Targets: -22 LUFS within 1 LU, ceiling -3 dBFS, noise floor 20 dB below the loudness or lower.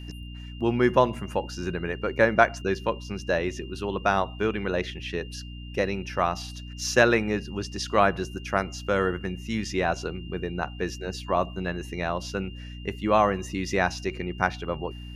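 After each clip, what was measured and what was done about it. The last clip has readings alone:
hum 60 Hz; harmonics up to 300 Hz; hum level -37 dBFS; steady tone 2800 Hz; tone level -47 dBFS; loudness -27.0 LUFS; peak -3.5 dBFS; loudness target -22.0 LUFS
-> de-hum 60 Hz, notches 5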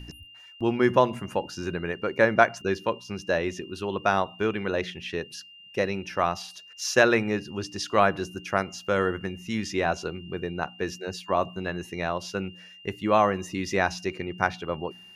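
hum none; steady tone 2800 Hz; tone level -47 dBFS
-> notch 2800 Hz, Q 30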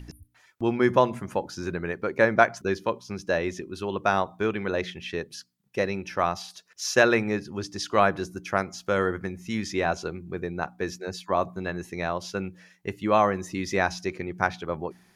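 steady tone none; loudness -27.0 LUFS; peak -3.5 dBFS; loudness target -22.0 LUFS
-> gain +5 dB; limiter -3 dBFS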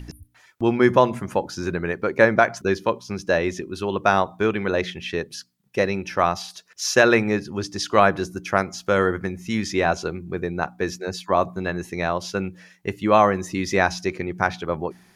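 loudness -22.5 LUFS; peak -3.0 dBFS; noise floor -57 dBFS

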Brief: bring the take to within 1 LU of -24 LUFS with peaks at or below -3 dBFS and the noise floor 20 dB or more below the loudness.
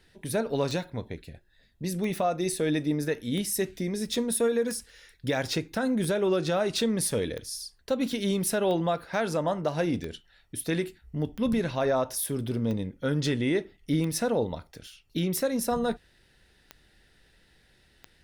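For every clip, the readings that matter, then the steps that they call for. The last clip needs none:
clicks 14; loudness -29.0 LUFS; peak -14.0 dBFS; loudness target -24.0 LUFS
-> de-click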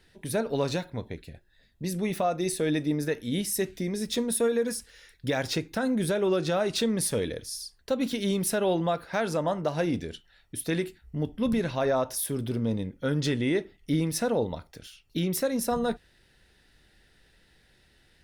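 clicks 0; loudness -29.0 LUFS; peak -16.0 dBFS; loudness target -24.0 LUFS
-> gain +5 dB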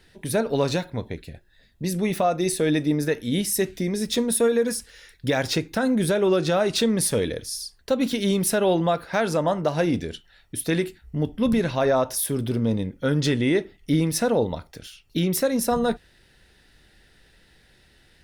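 loudness -24.0 LUFS; peak -11.0 dBFS; noise floor -58 dBFS

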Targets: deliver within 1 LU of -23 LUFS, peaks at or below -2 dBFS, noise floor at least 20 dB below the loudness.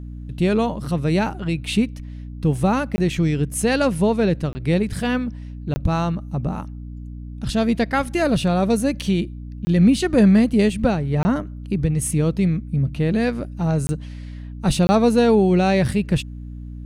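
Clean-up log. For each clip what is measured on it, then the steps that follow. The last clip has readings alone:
dropouts 7; longest dropout 20 ms; hum 60 Hz; harmonics up to 300 Hz; hum level -31 dBFS; loudness -20.5 LUFS; peak -5.0 dBFS; loudness target -23.0 LUFS
-> interpolate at 2.96/4.53/5.74/9.65/11.23/13.87/14.87, 20 ms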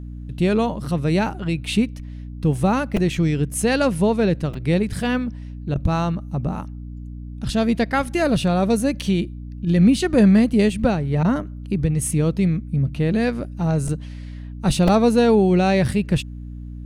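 dropouts 0; hum 60 Hz; harmonics up to 300 Hz; hum level -31 dBFS
-> notches 60/120/180/240/300 Hz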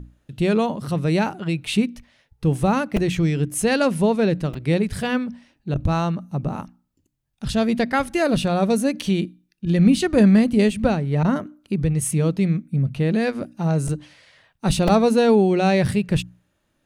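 hum none; loudness -21.0 LUFS; peak -5.0 dBFS; loudness target -23.0 LUFS
-> gain -2 dB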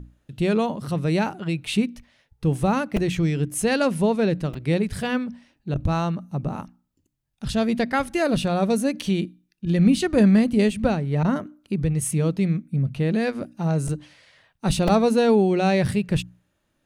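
loudness -23.0 LUFS; peak -7.0 dBFS; noise floor -72 dBFS

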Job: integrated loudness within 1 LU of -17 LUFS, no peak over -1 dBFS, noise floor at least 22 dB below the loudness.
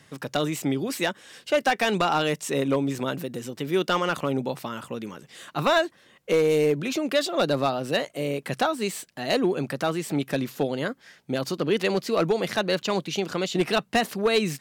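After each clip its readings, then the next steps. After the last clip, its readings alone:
clipped 0.5%; flat tops at -14.5 dBFS; loudness -26.0 LUFS; peak -14.5 dBFS; loudness target -17.0 LUFS
-> clip repair -14.5 dBFS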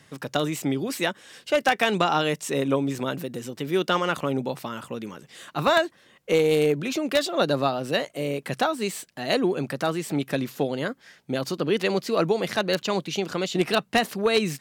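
clipped 0.0%; loudness -25.5 LUFS; peak -5.5 dBFS; loudness target -17.0 LUFS
-> gain +8.5 dB; limiter -1 dBFS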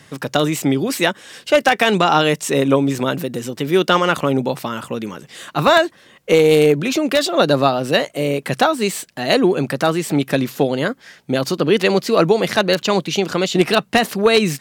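loudness -17.0 LUFS; peak -1.0 dBFS; noise floor -49 dBFS

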